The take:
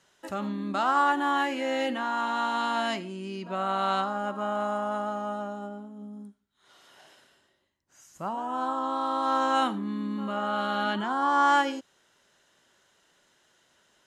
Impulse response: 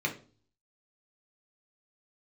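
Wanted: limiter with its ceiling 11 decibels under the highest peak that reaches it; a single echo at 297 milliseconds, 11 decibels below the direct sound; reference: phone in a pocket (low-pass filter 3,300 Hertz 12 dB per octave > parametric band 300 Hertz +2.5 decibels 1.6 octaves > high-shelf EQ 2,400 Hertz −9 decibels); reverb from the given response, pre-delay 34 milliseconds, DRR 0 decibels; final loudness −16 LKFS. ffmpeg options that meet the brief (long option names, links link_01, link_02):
-filter_complex "[0:a]alimiter=limit=-23dB:level=0:latency=1,aecho=1:1:297:0.282,asplit=2[link_01][link_02];[1:a]atrim=start_sample=2205,adelay=34[link_03];[link_02][link_03]afir=irnorm=-1:irlink=0,volume=-7.5dB[link_04];[link_01][link_04]amix=inputs=2:normalize=0,lowpass=3300,equalizer=frequency=300:width_type=o:width=1.6:gain=2.5,highshelf=frequency=2400:gain=-9,volume=14dB"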